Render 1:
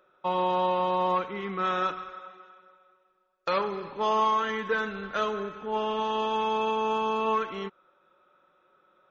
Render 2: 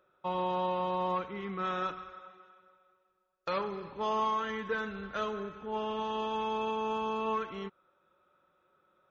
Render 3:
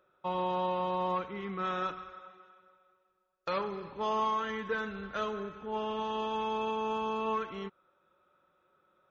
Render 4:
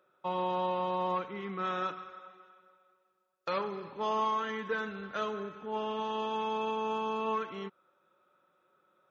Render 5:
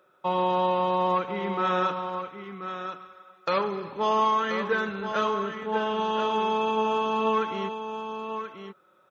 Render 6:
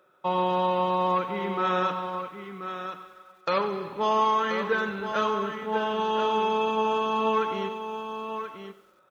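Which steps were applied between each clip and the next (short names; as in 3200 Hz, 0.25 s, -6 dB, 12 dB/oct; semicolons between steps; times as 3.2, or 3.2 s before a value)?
bell 77 Hz +10.5 dB 2 oct; gain -6.5 dB
nothing audible
HPF 140 Hz 12 dB/oct
echo 1.032 s -8.5 dB; gain +7.5 dB
lo-fi delay 94 ms, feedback 55%, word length 9-bit, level -14.5 dB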